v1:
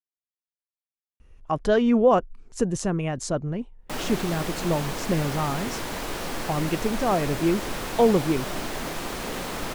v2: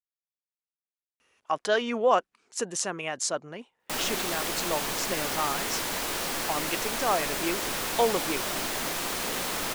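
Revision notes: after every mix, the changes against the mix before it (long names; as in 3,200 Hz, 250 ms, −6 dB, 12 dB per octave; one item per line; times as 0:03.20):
speech: add meter weighting curve A
master: add spectral tilt +2 dB per octave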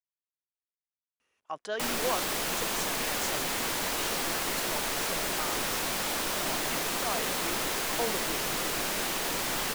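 speech −9.5 dB
background: entry −2.10 s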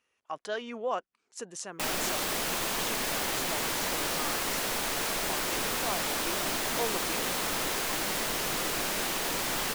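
speech: entry −1.20 s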